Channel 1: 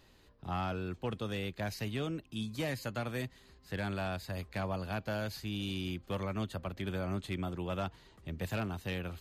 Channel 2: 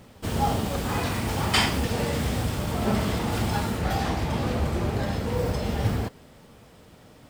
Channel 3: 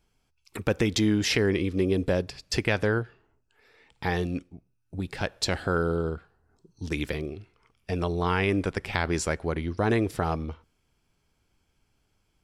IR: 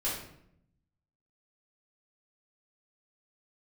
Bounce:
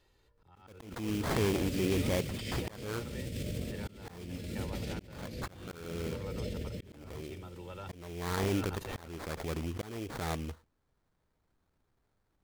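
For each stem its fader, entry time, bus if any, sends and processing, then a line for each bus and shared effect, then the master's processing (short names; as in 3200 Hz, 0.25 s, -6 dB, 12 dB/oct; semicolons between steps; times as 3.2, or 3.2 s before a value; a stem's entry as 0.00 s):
-10.0 dB, 0.00 s, no send, no echo send, comb 2.2 ms
-8.5 dB, 0.85 s, no send, echo send -6.5 dB, EQ curve 580 Hz 0 dB, 850 Hz -30 dB, 2200 Hz -1 dB; negative-ratio compressor -31 dBFS, ratio -1
-5.0 dB, 0.00 s, no send, no echo send, transient shaper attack -7 dB, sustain -2 dB; sample-rate reducer 2800 Hz, jitter 20%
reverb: off
echo: echo 0.286 s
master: auto swell 0.565 s; backwards sustainer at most 70 dB/s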